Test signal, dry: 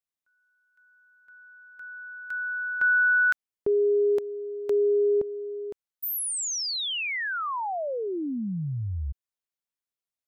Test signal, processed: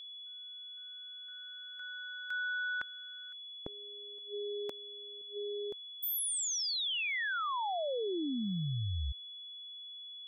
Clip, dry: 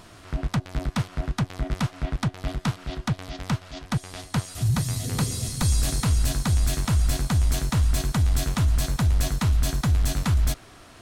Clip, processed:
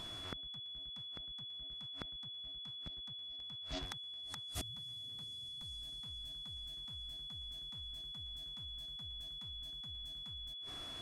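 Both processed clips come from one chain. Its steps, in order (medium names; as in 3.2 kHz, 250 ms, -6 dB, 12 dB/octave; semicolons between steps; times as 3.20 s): inverted gate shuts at -24 dBFS, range -29 dB; whistle 3.4 kHz -40 dBFS; trim -5 dB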